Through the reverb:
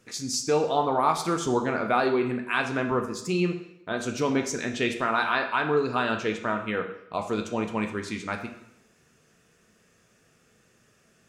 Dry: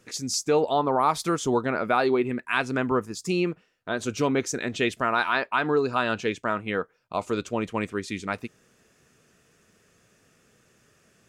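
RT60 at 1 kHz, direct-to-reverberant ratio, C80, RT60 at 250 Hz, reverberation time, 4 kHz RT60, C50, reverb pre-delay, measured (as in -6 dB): 0.80 s, 4.0 dB, 11.5 dB, 0.80 s, 0.80 s, 0.75 s, 9.0 dB, 5 ms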